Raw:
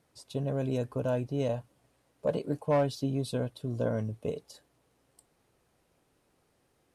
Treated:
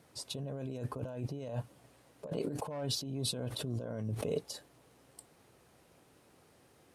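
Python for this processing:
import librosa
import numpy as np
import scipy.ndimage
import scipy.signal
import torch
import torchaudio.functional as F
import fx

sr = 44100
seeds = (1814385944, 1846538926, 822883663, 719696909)

y = fx.over_compress(x, sr, threshold_db=-39.0, ratio=-1.0)
y = scipy.signal.sosfilt(scipy.signal.butter(2, 66.0, 'highpass', fs=sr, output='sos'), y)
y = fx.pre_swell(y, sr, db_per_s=34.0, at=(2.31, 4.35))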